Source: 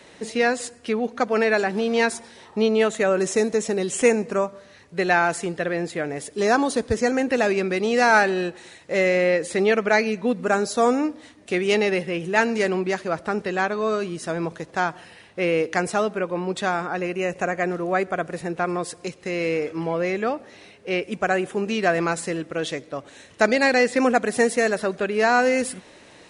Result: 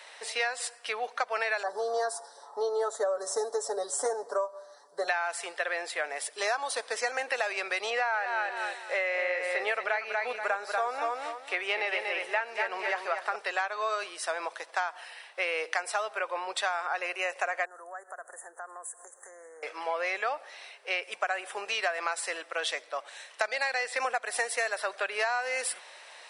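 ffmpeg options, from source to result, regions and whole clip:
-filter_complex "[0:a]asettb=1/sr,asplit=3[s0][s1][s2];[s0]atrim=end=1.634[s3];[s1]atrim=start=1.63:end=5.08,asetpts=PTS-STARTPTS,afade=t=in:d=0.004:c=qsin,afade=t=out:st=3.446:d=0.004:c=qsin,asuperstop=centerf=2500:order=4:qfactor=0.75,tiltshelf=f=770:g=5,aecho=1:1:7:0.8,atrim=end_sample=152145[s4];[s2]atrim=start=5.076[s5];[s3][s4]acrossfade=d=0.004:c1=hsin:c2=qsin[s6];[s6][s5]acrossfade=d=0.004:c1=qsin:c2=hsin,asettb=1/sr,asplit=3[s7][s8][s9];[s7]atrim=end=7.904[s10];[s8]atrim=start=7.9:end=13.36,asetpts=PTS-STARTPTS,afade=t=in:d=0.004:c=qsin,afade=t=out:st=5.456:d=0.004:c=qsin,acrossover=split=3100[s11][s12];[s12]acompressor=threshold=0.00398:ratio=4:attack=1:release=60[s13];[s11][s13]amix=inputs=2:normalize=0,aecho=1:1:238|476|714:0.501|0.125|0.0313,atrim=end_sample=240786[s14];[s9]atrim=start=13.356[s15];[s10][s14]acrossfade=d=0.004:c1=hsin:c2=qsin[s16];[s16][s15]acrossfade=d=0.004:c1=qsin:c2=hsin,asettb=1/sr,asplit=3[s17][s18][s19];[s17]atrim=end=17.654[s20];[s18]atrim=start=17.65:end=19.63,asetpts=PTS-STARTPTS,afade=t=in:d=0.004:c=qsin,afade=t=out:st=1.976:d=0.004:c=qsin,bass=f=250:g=-4,treble=f=4000:g=10,acompressor=threshold=0.0112:ratio=4:attack=3.2:release=140:knee=1:detection=peak,asuperstop=centerf=3500:order=20:qfactor=0.76[s21];[s19]atrim=start=19.626[s22];[s20][s21]acrossfade=d=0.004:c1=hsin:c2=qsin[s23];[s23][s22]acrossfade=d=0.004:c1=qsin:c2=hsin,highpass=f=670:w=0.5412,highpass=f=670:w=1.3066,bandreject=f=6700:w=8,acompressor=threshold=0.0447:ratio=16,volume=1.19"

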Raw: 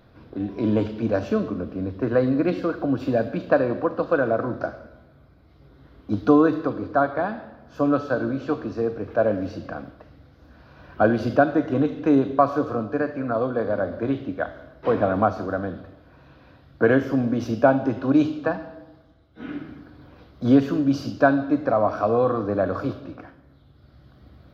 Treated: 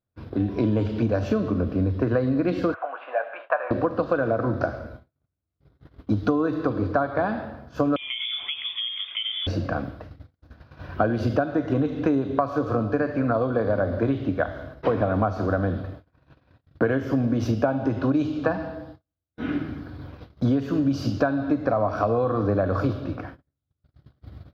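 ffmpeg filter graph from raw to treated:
-filter_complex "[0:a]asettb=1/sr,asplit=3[s0][s1][s2];[s0]atrim=end=2.744[s3];[s1]atrim=start=2.74:end=3.71,asetpts=PTS-STARTPTS,afade=t=in:d=0.004:c=qsin,afade=t=out:st=0.966:d=0.004:c=qsin,asuperpass=centerf=1400:order=8:qfactor=0.65,aemphasis=mode=reproduction:type=75fm,asplit=2[s4][s5];[s5]adelay=20,volume=0.266[s6];[s4][s6]amix=inputs=2:normalize=0,atrim=end_sample=42777[s7];[s2]atrim=start=3.706[s8];[s3][s7]acrossfade=d=0.004:c1=hsin:c2=qsin[s9];[s9][s8]acrossfade=d=0.004:c1=qsin:c2=hsin,asettb=1/sr,asplit=3[s10][s11][s12];[s10]atrim=end=7.964[s13];[s11]atrim=start=7.96:end=9.47,asetpts=PTS-STARTPTS,afade=t=in:d=0.004:c=qsin,afade=t=out:st=1.506:d=0.004:c=qsin,highpass=f=500:p=1,acompressor=threshold=0.0316:ratio=12:attack=3.2:release=140:knee=1:detection=peak,lowpass=f=3100:t=q:w=0.5098,lowpass=f=3100:t=q:w=0.6013,lowpass=f=3100:t=q:w=0.9,lowpass=f=3100:t=q:w=2.563,afreqshift=-3700[s14];[s12]atrim=start=9.466[s15];[s13][s14]acrossfade=d=0.004:c1=hsin:c2=qsin[s16];[s16][s15]acrossfade=d=0.004:c1=qsin:c2=hsin,agate=range=0.01:threshold=0.00447:ratio=16:detection=peak,equalizer=f=92:w=1.5:g=8,acompressor=threshold=0.0631:ratio=10,volume=1.88"

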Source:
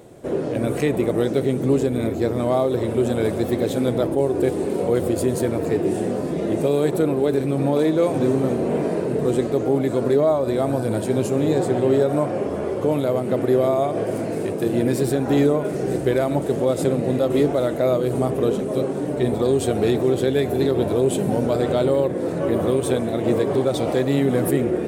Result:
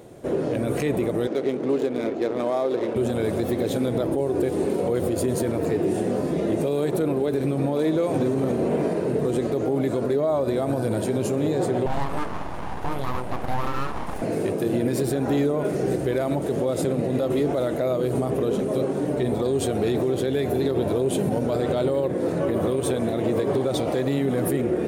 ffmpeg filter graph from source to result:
-filter_complex "[0:a]asettb=1/sr,asplit=3[s0][s1][s2];[s0]atrim=end=1.274[s3];[s1]atrim=start=1.27:end=2.96,asetpts=PTS-STARTPTS,afade=t=in:d=0.004:c=qsin,afade=t=out:st=1.686:d=0.004:c=qsin,highpass=300,adynamicsmooth=sensitivity=7.5:basefreq=1300[s4];[s2]atrim=start=2.956[s5];[s3][s4]acrossfade=d=0.004:c1=hsin:c2=qsin[s6];[s6][s5]acrossfade=d=0.004:c1=qsin:c2=hsin,asettb=1/sr,asplit=3[s7][s8][s9];[s7]atrim=end=11.864[s10];[s8]atrim=start=11.86:end=14.22,asetpts=PTS-STARTPTS,afade=t=in:d=0.004:c=qsin,afade=t=out:st=2.356:d=0.004:c=qsin,flanger=delay=5.2:depth=4.8:regen=-58:speed=1.5:shape=sinusoidal,aeval=exprs='abs(val(0))':c=same[s11];[s9]atrim=start=14.216[s12];[s10][s11]acrossfade=d=0.004:c1=hsin:c2=qsin[s13];[s13][s12]acrossfade=d=0.004:c1=qsin:c2=hsin,bandreject=f=7800:w=16,alimiter=limit=0.188:level=0:latency=1:release=61"

